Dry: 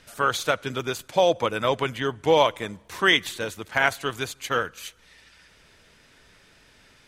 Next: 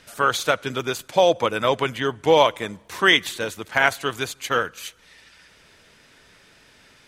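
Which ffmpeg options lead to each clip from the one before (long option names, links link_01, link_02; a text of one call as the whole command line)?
ffmpeg -i in.wav -af "lowshelf=frequency=76:gain=-8,volume=3dB" out.wav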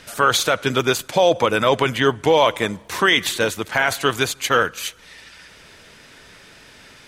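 ffmpeg -i in.wav -af "alimiter=limit=-12.5dB:level=0:latency=1:release=21,volume=7.5dB" out.wav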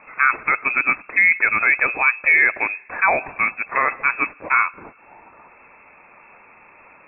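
ffmpeg -i in.wav -af "lowpass=frequency=2300:width_type=q:width=0.5098,lowpass=frequency=2300:width_type=q:width=0.6013,lowpass=frequency=2300:width_type=q:width=0.9,lowpass=frequency=2300:width_type=q:width=2.563,afreqshift=-2700" out.wav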